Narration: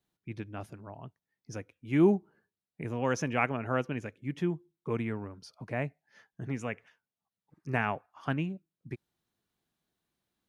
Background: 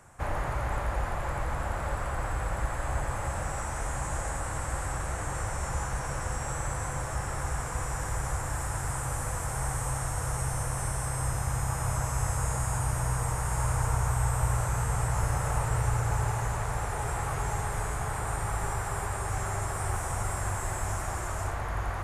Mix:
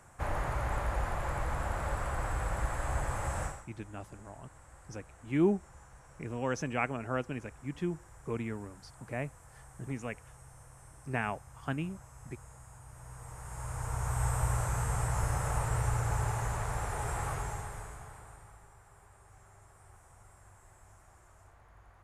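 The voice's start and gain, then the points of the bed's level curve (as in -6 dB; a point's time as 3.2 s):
3.40 s, -3.5 dB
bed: 3.45 s -2.5 dB
3.68 s -23 dB
12.85 s -23 dB
14.25 s -3.5 dB
17.29 s -3.5 dB
18.69 s -26.5 dB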